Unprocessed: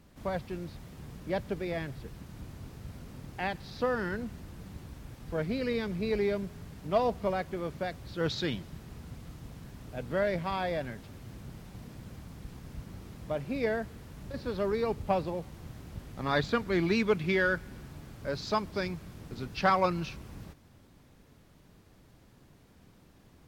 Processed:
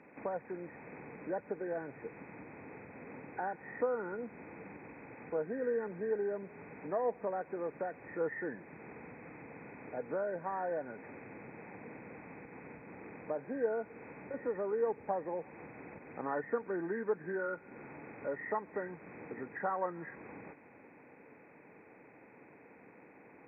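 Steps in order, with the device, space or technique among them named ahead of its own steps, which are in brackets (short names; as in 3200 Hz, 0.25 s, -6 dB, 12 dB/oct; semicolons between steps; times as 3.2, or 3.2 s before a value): hearing aid with frequency lowering (nonlinear frequency compression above 1400 Hz 4:1; compressor 2.5:1, threshold -44 dBFS, peak gain reduction 16 dB; speaker cabinet 270–6500 Hz, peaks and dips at 290 Hz +4 dB, 470 Hz +8 dB, 850 Hz +7 dB, 1600 Hz -5 dB, 2700 Hz -5 dB); gain +3 dB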